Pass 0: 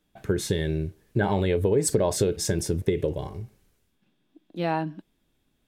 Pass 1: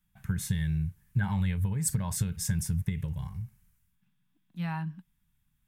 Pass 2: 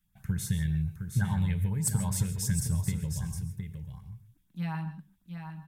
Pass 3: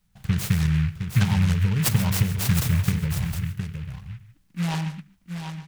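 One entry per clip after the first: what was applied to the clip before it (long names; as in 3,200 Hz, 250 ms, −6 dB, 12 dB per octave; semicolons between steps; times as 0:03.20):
drawn EQ curve 180 Hz 0 dB, 360 Hz −30 dB, 640 Hz −23 dB, 910 Hz −8 dB, 1,900 Hz −5 dB, 4,100 Hz −11 dB, 13,000 Hz +2 dB
single-tap delay 713 ms −7.5 dB; auto-filter notch saw up 8 Hz 710–3,600 Hz; reverb whose tail is shaped and stops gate 170 ms rising, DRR 12 dB
short delay modulated by noise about 1,900 Hz, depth 0.13 ms; level +7.5 dB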